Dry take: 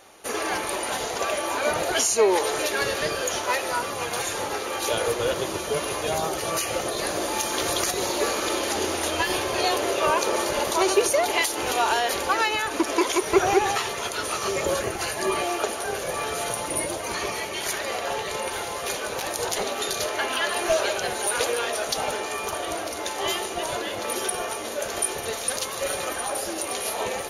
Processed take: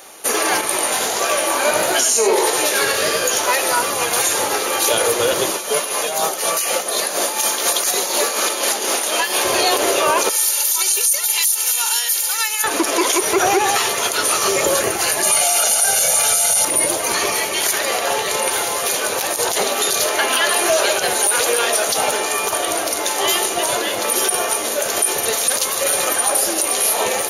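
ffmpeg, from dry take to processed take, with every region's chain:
-filter_complex "[0:a]asettb=1/sr,asplit=3[a][b][c];[a]atrim=end=0.614[d];[b]atrim=start=0.61:end=3.39,asetpts=PTS-STARTPTS,afade=t=in:d=0.004:c=qsin,afade=t=out:st=2.776:d=0.004:c=qsin,aecho=1:1:93:0.668,atrim=end_sample=122598,flanger=delay=16:depth=6.8:speed=1.5[e];[c]atrim=start=3.386[f];[d][e]acrossfade=d=0.004:c1=hsin:c2=qsin[g];[g][f]acrossfade=d=0.004:c1=qsin:c2=hsin,asettb=1/sr,asplit=3[h][i][j];[h]atrim=end=5.514[k];[i]atrim=start=5.51:end=9.45,asetpts=PTS-STARTPTS,afade=t=in:d=0.004:c=qsin,afade=t=out:st=3.936:d=0.004:c=qsin,highpass=f=190:w=0.5412,highpass=f=190:w=1.3066,equalizer=f=320:w=2.6:g=-7,tremolo=f=4.1:d=0.57[l];[j]atrim=start=9.446[m];[k][l]acrossfade=d=0.004:c1=hsin:c2=qsin[n];[n][m]acrossfade=d=0.004:c1=qsin:c2=hsin,asettb=1/sr,asplit=3[o][p][q];[o]atrim=end=10.294[r];[p]atrim=start=10.29:end=12.64,asetpts=PTS-STARTPTS,afade=t=in:d=0.004:c=qsin,afade=t=out:st=2.346:d=0.004:c=qsin,highpass=f=360:p=1,aderivative,aecho=1:1:2.2:0.94,atrim=end_sample=103635[s];[q]atrim=start=12.636[t];[r][s]acrossfade=d=0.004:c1=hsin:c2=qsin[u];[u][t]acrossfade=d=0.004:c1=qsin:c2=hsin,asettb=1/sr,asplit=3[v][w][x];[v]atrim=end=15.234[y];[w]atrim=start=15.23:end=16.65,asetpts=PTS-STARTPTS,afade=t=in:d=0.004:c=qsin,afade=t=out:st=1.416:d=0.004:c=qsin,equalizer=f=8.4k:w=0.38:g=12.5,aecho=1:1:1.4:0.79,atrim=end_sample=62622[z];[x]atrim=start=16.646[aa];[y][z]acrossfade=d=0.004:c1=hsin:c2=qsin[ab];[ab][aa]acrossfade=d=0.004:c1=qsin:c2=hsin,highpass=f=220:p=1,highshelf=f=7.4k:g=11.5,alimiter=limit=-15dB:level=0:latency=1:release=39,volume=8.5dB"

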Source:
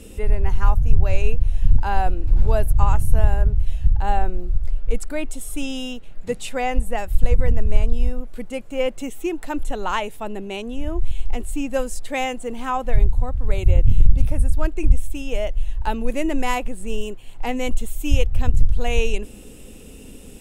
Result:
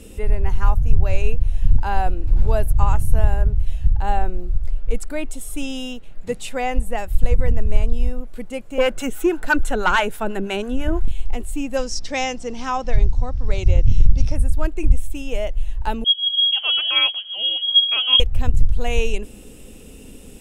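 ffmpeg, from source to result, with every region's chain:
-filter_complex "[0:a]asettb=1/sr,asplit=3[a][b][c];[a]atrim=end=8.784[d];[b]atrim=start=8.78:end=11.08,asetpts=PTS-STARTPTS,afade=t=in:d=0.004:c=qsin,afade=t=out:st=2.296:d=0.004:c=qsin,equalizer=f=1.5k:w=5:g=13.5,acrossover=split=620[e][f];[e]aeval=exprs='val(0)*(1-0.7/2+0.7/2*cos(2*PI*6.1*n/s))':c=same[g];[f]aeval=exprs='val(0)*(1-0.7/2-0.7/2*cos(2*PI*6.1*n/s))':c=same[h];[g][h]amix=inputs=2:normalize=0,aeval=exprs='0.355*sin(PI/2*1.78*val(0)/0.355)':c=same[i];[c]atrim=start=11.076[j];[d][i]acrossfade=d=0.004:c1=hsin:c2=qsin[k];[k][j]acrossfade=d=0.004:c1=qsin:c2=hsin,asettb=1/sr,asplit=3[l][m][n];[l]atrim=end=11.774[o];[m]atrim=start=11.77:end=14.36,asetpts=PTS-STARTPTS,afade=t=in:d=0.004:c=qsin,afade=t=out:st=2.586:d=0.004:c=qsin,aeval=exprs='val(0)+0.00631*(sin(2*PI*60*n/s)+sin(2*PI*2*60*n/s)/2+sin(2*PI*3*60*n/s)/3+sin(2*PI*4*60*n/s)/4+sin(2*PI*5*60*n/s)/5)':c=same,lowpass=f=5.5k:t=q:w=8.9[p];[n]atrim=start=14.356[q];[o][p]acrossfade=d=0.004:c1=hsin:c2=qsin[r];[r][q]acrossfade=d=0.004:c1=qsin:c2=hsin,asettb=1/sr,asplit=3[s][t][u];[s]atrim=end=16.044[v];[t]atrim=start=16.04:end=18.2,asetpts=PTS-STARTPTS,afade=t=in:d=0.004:c=qsin,afade=t=out:st=2.156:d=0.004:c=qsin,acrossover=split=160[w][x];[x]adelay=480[y];[w][y]amix=inputs=2:normalize=0,atrim=end_sample=95256,lowpass=f=2.8k:t=q:w=0.5098,lowpass=f=2.8k:t=q:w=0.6013,lowpass=f=2.8k:t=q:w=0.9,lowpass=f=2.8k:t=q:w=2.563,afreqshift=-3300[z];[u]atrim=start=18.196[aa];[v][z]acrossfade=d=0.004:c1=hsin:c2=qsin[ab];[ab][aa]acrossfade=d=0.004:c1=qsin:c2=hsin"

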